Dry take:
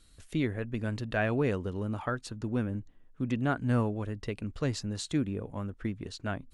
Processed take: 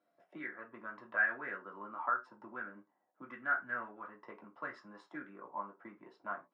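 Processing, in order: dynamic EQ 2600 Hz, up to -6 dB, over -52 dBFS, Q 1.6; auto-wah 680–1600 Hz, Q 5.5, up, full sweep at -25 dBFS; reverb, pre-delay 3 ms, DRR -1.5 dB; gain -2 dB

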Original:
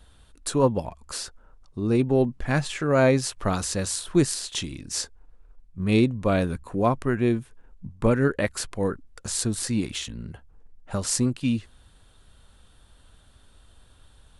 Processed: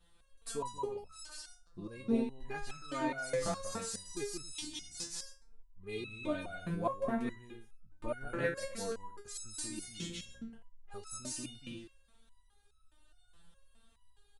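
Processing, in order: loudspeakers at several distances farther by 64 m -2 dB, 94 m -9 dB; stepped resonator 4.8 Hz 170–1300 Hz; gain +1 dB

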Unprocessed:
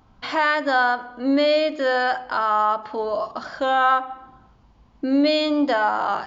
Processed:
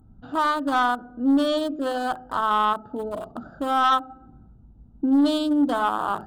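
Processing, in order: Wiener smoothing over 41 samples; EQ curve 240 Hz 0 dB, 550 Hz -10 dB, 1300 Hz +1 dB, 2200 Hz -24 dB, 3200 Hz -3 dB, 5800 Hz -13 dB, 8200 Hz +8 dB; sine folder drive 4 dB, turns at -11.5 dBFS; gain -2.5 dB

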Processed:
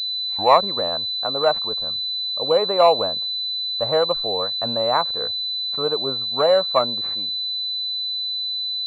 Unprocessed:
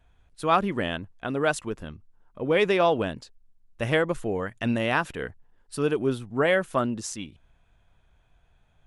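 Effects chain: tape start at the beginning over 0.63 s; band shelf 790 Hz +15 dB; pulse-width modulation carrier 4000 Hz; gain -7 dB

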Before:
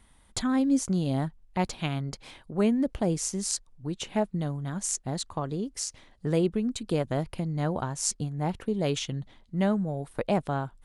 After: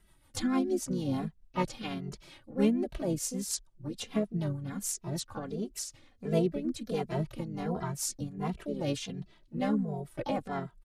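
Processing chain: harmoniser -4 st -15 dB, +5 st -6 dB; rotary speaker horn 6.7 Hz; endless flanger 2.6 ms -1.4 Hz

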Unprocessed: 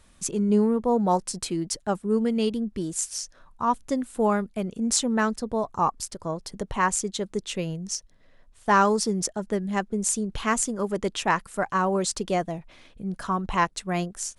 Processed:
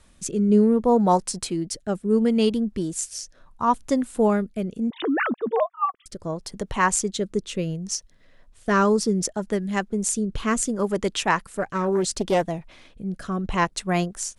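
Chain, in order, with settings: 4.9–6.06 sine-wave speech; rotary speaker horn 0.7 Hz; 11.49–12.43 Doppler distortion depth 0.3 ms; gain +4.5 dB

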